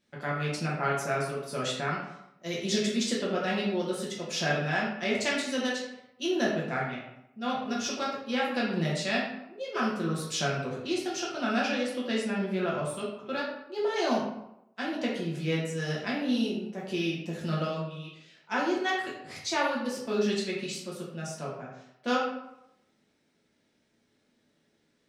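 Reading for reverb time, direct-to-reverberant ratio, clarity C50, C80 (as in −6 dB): 0.85 s, −5.5 dB, 2.5 dB, 5.5 dB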